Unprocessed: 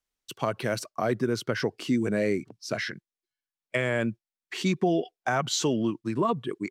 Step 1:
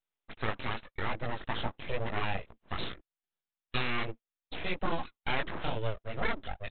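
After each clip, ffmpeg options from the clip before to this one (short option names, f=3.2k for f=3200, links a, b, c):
-af "tiltshelf=f=660:g=-3.5,flanger=delay=17:depth=5:speed=2.4,aresample=8000,aeval=exprs='abs(val(0))':c=same,aresample=44100"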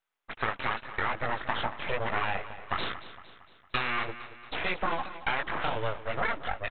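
-af "equalizer=f=1.3k:w=0.5:g=11.5,acompressor=threshold=-25dB:ratio=6,aecho=1:1:229|458|687|916|1145:0.2|0.102|0.0519|0.0265|0.0135"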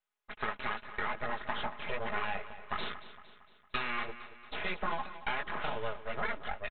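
-af "aecho=1:1:4.8:0.48,volume=-6dB"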